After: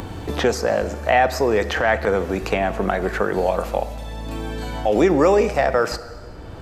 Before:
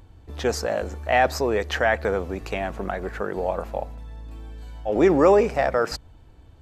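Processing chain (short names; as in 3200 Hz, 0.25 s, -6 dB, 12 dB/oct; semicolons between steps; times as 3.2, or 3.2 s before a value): 1.55–2.07 transient shaper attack -11 dB, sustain +3 dB; two-slope reverb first 0.99 s, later 2.7 s, from -25 dB, DRR 12.5 dB; three-band squash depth 70%; gain +4 dB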